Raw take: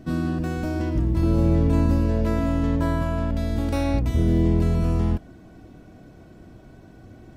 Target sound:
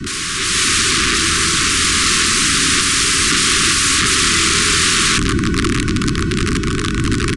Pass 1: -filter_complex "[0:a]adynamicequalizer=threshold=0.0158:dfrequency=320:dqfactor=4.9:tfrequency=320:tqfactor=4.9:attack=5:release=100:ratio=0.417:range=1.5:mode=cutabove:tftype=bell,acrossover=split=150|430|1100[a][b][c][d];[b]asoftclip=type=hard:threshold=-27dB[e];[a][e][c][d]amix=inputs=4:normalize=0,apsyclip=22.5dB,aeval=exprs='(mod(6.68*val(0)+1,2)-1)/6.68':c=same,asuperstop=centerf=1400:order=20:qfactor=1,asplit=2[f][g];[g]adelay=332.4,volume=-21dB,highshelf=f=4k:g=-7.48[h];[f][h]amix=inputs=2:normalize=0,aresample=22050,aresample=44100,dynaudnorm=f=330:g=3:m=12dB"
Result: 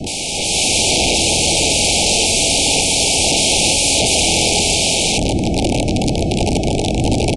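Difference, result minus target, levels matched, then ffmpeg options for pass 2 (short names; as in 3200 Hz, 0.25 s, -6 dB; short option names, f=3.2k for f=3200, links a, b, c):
hard clip: distortion +12 dB; 500 Hz band +7.5 dB
-filter_complex "[0:a]adynamicequalizer=threshold=0.0158:dfrequency=320:dqfactor=4.9:tfrequency=320:tqfactor=4.9:attack=5:release=100:ratio=0.417:range=1.5:mode=cutabove:tftype=bell,acrossover=split=150|430|1100[a][b][c][d];[b]asoftclip=type=hard:threshold=-21dB[e];[a][e][c][d]amix=inputs=4:normalize=0,apsyclip=22.5dB,aeval=exprs='(mod(6.68*val(0)+1,2)-1)/6.68':c=same,asuperstop=centerf=670:order=20:qfactor=1,asplit=2[f][g];[g]adelay=332.4,volume=-21dB,highshelf=f=4k:g=-7.48[h];[f][h]amix=inputs=2:normalize=0,aresample=22050,aresample=44100,dynaudnorm=f=330:g=3:m=12dB"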